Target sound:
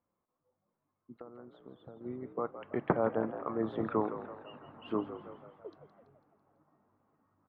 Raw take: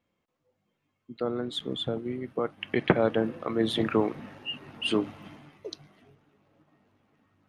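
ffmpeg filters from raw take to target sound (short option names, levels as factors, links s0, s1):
-filter_complex "[0:a]asettb=1/sr,asplit=3[s0][s1][s2];[s0]atrim=end=1.124[s3];[s1]atrim=start=1.12:end=2.01,asetpts=PTS-STARTPTS,afade=t=in:d=0.004:c=qsin,afade=t=out:st=0.886:d=0.004:c=qsin,acompressor=threshold=0.0112:ratio=16[s4];[s2]atrim=start=2.006[s5];[s3][s4]acrossfade=d=0.004:c1=hsin:c2=qsin[s6];[s6][s5]acrossfade=d=0.004:c1=qsin:c2=hsin,lowpass=f=1100:t=q:w=2.1,asplit=7[s7][s8][s9][s10][s11][s12][s13];[s8]adelay=166,afreqshift=63,volume=0.251[s14];[s9]adelay=332,afreqshift=126,volume=0.133[s15];[s10]adelay=498,afreqshift=189,volume=0.0708[s16];[s11]adelay=664,afreqshift=252,volume=0.0376[s17];[s12]adelay=830,afreqshift=315,volume=0.0197[s18];[s13]adelay=996,afreqshift=378,volume=0.0105[s19];[s7][s14][s15][s16][s17][s18][s19]amix=inputs=7:normalize=0,volume=0.398"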